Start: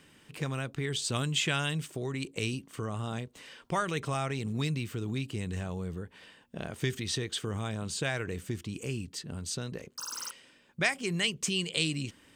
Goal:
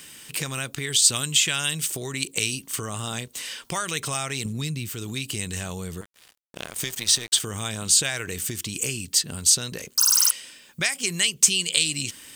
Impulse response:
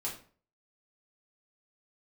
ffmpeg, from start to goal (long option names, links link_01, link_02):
-filter_complex "[0:a]asettb=1/sr,asplit=3[link_01][link_02][link_03];[link_01]atrim=end=4.454[link_04];[link_02]atrim=start=4.45:end=4.89,asetpts=PTS-STARTPTS,afade=type=in:duration=0.004:curve=qsin,afade=type=out:start_time=0.436:duration=0.004:curve=qsin,equalizer=frequency=130:width=0.36:gain=10[link_05];[link_03]atrim=start=4.886[link_06];[link_04][link_05]acrossfade=duration=0.004:curve1=hsin:curve2=qsin[link_07];[link_07][link_06]acrossfade=duration=0.004:curve1=qsin:curve2=hsin,acompressor=threshold=-34dB:ratio=4,crystalizer=i=7.5:c=0,asettb=1/sr,asplit=3[link_08][link_09][link_10];[link_08]atrim=end=6.014[link_11];[link_09]atrim=start=6.01:end=7.4,asetpts=PTS-STARTPTS,afade=type=in:duration=0.004:curve=qsin,afade=type=out:start_time=1.386:duration=0.004:curve=qsin,aeval=exprs='sgn(val(0))*max(abs(val(0))-0.0112,0)':channel_layout=same[link_12];[link_10]atrim=start=7.396[link_13];[link_11][link_12]acrossfade=duration=0.004:curve1=hsin:curve2=qsin[link_14];[link_14][link_13]acrossfade=duration=0.004:curve1=qsin:curve2=hsin,volume=4dB"